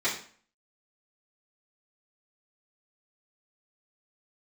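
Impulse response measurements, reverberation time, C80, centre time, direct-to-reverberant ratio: 0.45 s, 11.5 dB, 28 ms, -11.0 dB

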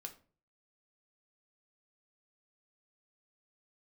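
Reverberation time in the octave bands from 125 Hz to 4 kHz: 0.60, 0.50, 0.45, 0.35, 0.30, 0.25 s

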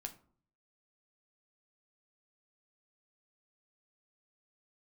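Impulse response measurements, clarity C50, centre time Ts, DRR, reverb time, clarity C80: 14.5 dB, 7 ms, 5.0 dB, 0.50 s, 19.5 dB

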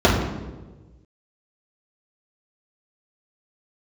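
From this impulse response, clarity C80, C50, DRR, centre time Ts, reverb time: 5.5 dB, 3.5 dB, -8.5 dB, 50 ms, 1.2 s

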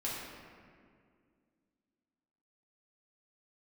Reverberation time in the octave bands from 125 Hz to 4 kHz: 2.4, 3.0, 2.3, 1.9, 1.8, 1.2 s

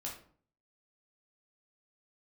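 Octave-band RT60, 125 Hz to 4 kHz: 0.65, 0.60, 0.50, 0.50, 0.40, 0.30 s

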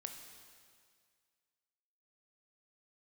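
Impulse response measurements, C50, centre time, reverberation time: 6.0 dB, 43 ms, 2.0 s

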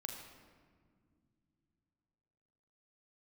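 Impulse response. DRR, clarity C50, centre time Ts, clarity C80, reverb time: 1.5 dB, 4.5 dB, 51 ms, 5.5 dB, 2.1 s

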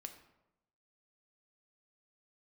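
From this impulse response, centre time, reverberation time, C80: 14 ms, 0.90 s, 12.0 dB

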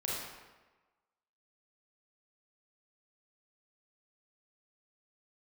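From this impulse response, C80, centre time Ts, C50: 1.5 dB, 89 ms, -2.0 dB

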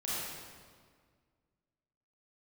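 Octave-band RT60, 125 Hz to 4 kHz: 2.2, 2.1, 1.9, 1.7, 1.5, 1.4 s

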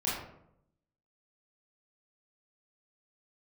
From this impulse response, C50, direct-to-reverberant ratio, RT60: 1.0 dB, -8.0 dB, 0.75 s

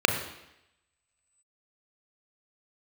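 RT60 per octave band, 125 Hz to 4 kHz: 0.75, 0.85, 0.85, 0.85, 0.95, 0.90 s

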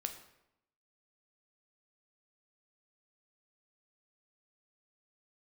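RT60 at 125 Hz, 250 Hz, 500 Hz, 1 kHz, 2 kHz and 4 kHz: 0.90, 0.95, 0.85, 0.80, 0.75, 0.60 s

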